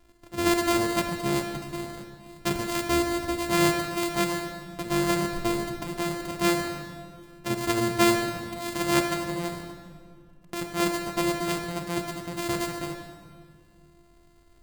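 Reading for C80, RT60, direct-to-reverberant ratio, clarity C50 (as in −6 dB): 7.5 dB, 2.1 s, 5.0 dB, 6.5 dB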